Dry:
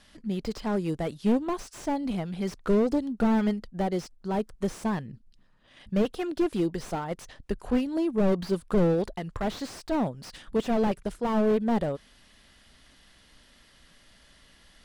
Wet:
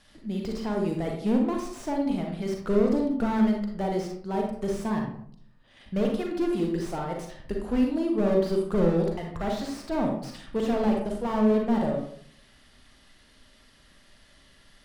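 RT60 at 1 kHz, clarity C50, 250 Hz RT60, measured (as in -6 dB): 0.60 s, 3.0 dB, 0.75 s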